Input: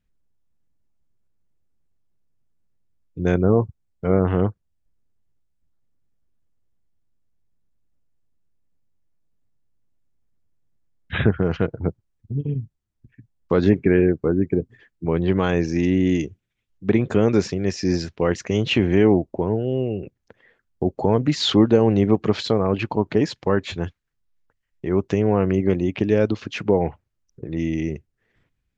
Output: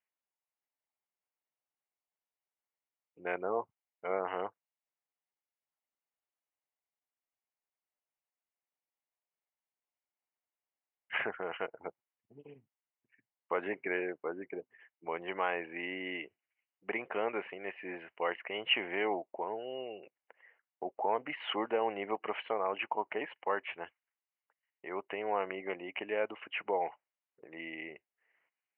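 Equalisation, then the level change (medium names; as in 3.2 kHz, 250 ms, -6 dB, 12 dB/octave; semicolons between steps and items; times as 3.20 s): high-pass 820 Hz 12 dB/octave; rippled Chebyshev low-pass 3 kHz, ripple 6 dB; -1.5 dB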